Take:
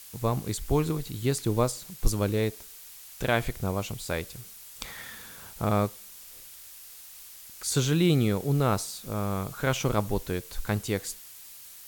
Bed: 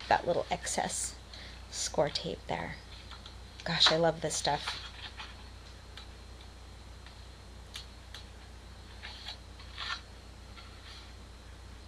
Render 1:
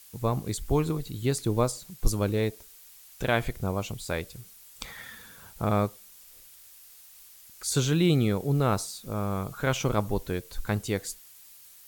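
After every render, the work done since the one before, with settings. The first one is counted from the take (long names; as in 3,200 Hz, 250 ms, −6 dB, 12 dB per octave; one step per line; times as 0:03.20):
broadband denoise 6 dB, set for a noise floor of −47 dBFS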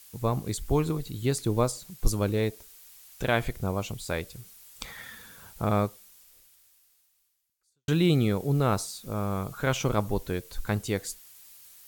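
0:05.78–0:07.88: fade out quadratic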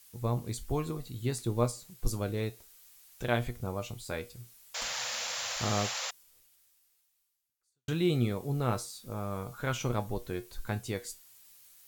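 tuned comb filter 120 Hz, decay 0.2 s, harmonics all, mix 70%
0:04.74–0:06.11: sound drawn into the spectrogram noise 470–7,500 Hz −36 dBFS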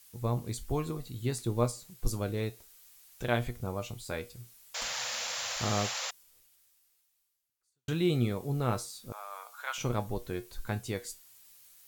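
0:09.12–0:09.78: high-pass filter 780 Hz 24 dB per octave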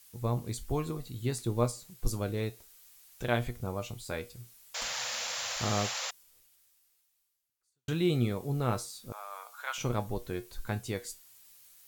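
no processing that can be heard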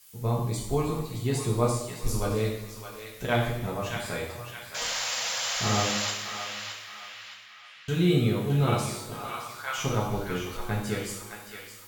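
feedback echo with a band-pass in the loop 617 ms, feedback 54%, band-pass 2,200 Hz, level −5 dB
coupled-rooms reverb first 0.76 s, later 2.9 s, DRR −3.5 dB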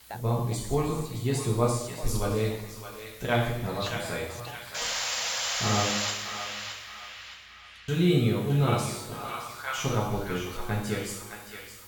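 mix in bed −14 dB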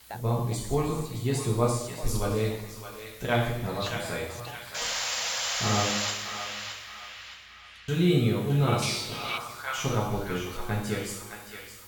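0:08.82–0:09.38: flat-topped bell 3,500 Hz +11 dB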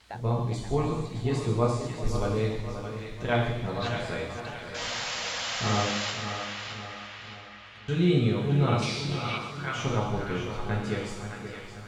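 high-frequency loss of the air 99 metres
echo with a time of its own for lows and highs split 2,400 Hz, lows 528 ms, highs 138 ms, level −10 dB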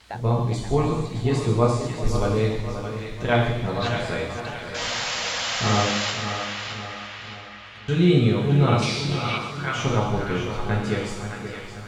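level +5.5 dB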